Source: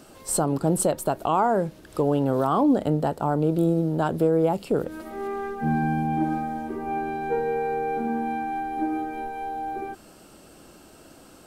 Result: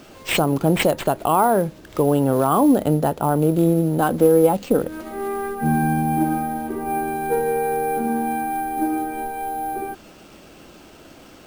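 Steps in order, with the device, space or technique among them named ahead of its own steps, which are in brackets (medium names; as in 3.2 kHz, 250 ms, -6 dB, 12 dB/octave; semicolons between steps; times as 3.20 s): 3.98–4.81 s: comb 3.9 ms, depth 50%; early companding sampler (sample-rate reducer 11 kHz, jitter 0%; companded quantiser 8-bit); trim +4.5 dB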